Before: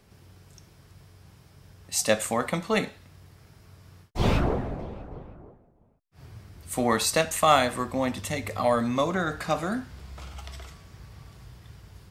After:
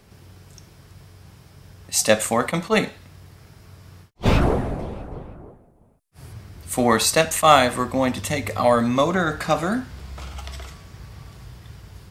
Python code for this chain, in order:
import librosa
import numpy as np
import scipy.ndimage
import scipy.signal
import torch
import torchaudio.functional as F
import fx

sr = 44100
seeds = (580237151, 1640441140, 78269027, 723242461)

y = fx.peak_eq(x, sr, hz=10000.0, db=12.0, octaves=0.8, at=(4.41, 6.33))
y = fx.attack_slew(y, sr, db_per_s=490.0)
y = F.gain(torch.from_numpy(y), 6.0).numpy()